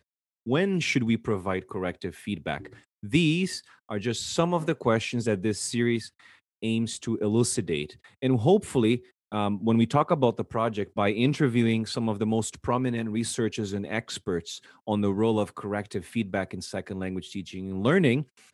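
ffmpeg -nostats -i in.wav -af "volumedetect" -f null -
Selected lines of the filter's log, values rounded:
mean_volume: -27.0 dB
max_volume: -7.4 dB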